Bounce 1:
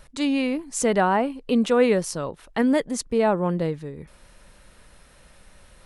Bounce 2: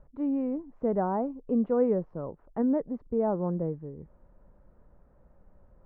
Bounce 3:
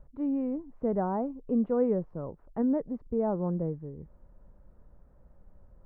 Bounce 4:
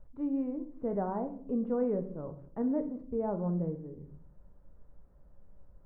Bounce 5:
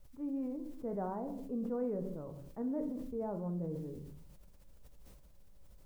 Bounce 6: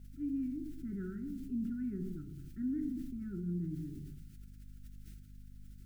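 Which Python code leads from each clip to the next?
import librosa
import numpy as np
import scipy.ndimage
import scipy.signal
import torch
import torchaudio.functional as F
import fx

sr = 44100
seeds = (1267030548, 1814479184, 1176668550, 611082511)

y1 = scipy.signal.sosfilt(scipy.signal.bessel(4, 720.0, 'lowpass', norm='mag', fs=sr, output='sos'), x)
y1 = y1 * 10.0 ** (-5.0 / 20.0)
y2 = fx.low_shelf(y1, sr, hz=160.0, db=6.0)
y2 = y2 * 10.0 ** (-2.5 / 20.0)
y3 = fx.room_shoebox(y2, sr, seeds[0], volume_m3=74.0, walls='mixed', distance_m=0.36)
y3 = y3 * 10.0 ** (-4.5 / 20.0)
y4 = fx.quant_dither(y3, sr, seeds[1], bits=12, dither='triangular')
y4 = fx.sustainer(y4, sr, db_per_s=28.0)
y4 = y4 * 10.0 ** (-6.5 / 20.0)
y5 = fx.brickwall_bandstop(y4, sr, low_hz=390.0, high_hz=1300.0)
y5 = fx.add_hum(y5, sr, base_hz=50, snr_db=13)
y5 = y5 * 10.0 ** (1.5 / 20.0)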